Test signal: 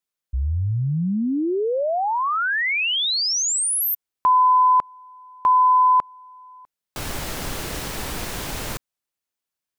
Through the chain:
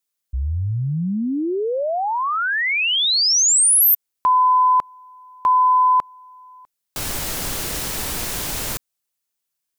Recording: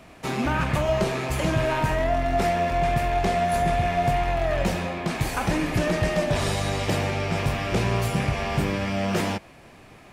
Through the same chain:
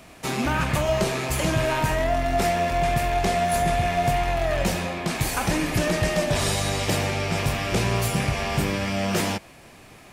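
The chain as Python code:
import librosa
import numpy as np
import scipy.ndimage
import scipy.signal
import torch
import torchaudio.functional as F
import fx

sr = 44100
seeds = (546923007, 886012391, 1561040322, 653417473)

y = fx.high_shelf(x, sr, hz=4300.0, db=9.0)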